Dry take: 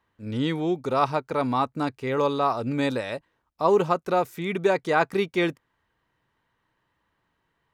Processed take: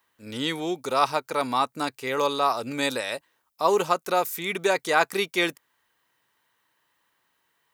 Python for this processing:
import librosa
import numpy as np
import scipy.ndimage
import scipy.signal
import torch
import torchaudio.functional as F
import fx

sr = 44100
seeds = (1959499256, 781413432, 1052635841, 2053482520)

y = fx.riaa(x, sr, side='recording')
y = F.gain(torch.from_numpy(y), 1.0).numpy()